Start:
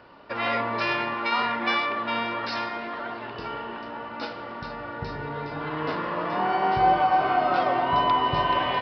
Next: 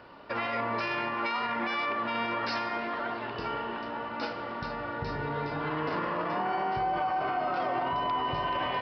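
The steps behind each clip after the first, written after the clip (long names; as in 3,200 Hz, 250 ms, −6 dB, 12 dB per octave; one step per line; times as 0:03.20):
dynamic equaliser 3,700 Hz, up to −5 dB, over −51 dBFS, Q 4.1
brickwall limiter −22.5 dBFS, peak gain reduction 11.5 dB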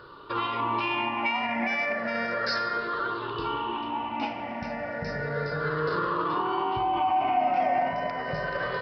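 rippled gain that drifts along the octave scale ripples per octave 0.61, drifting −0.33 Hz, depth 16 dB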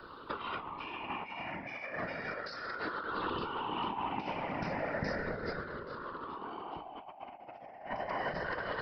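compressor whose output falls as the input rises −32 dBFS, ratio −0.5
random phases in short frames
level −6.5 dB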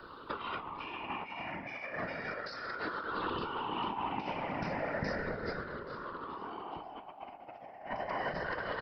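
repeating echo 453 ms, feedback 53%, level −20.5 dB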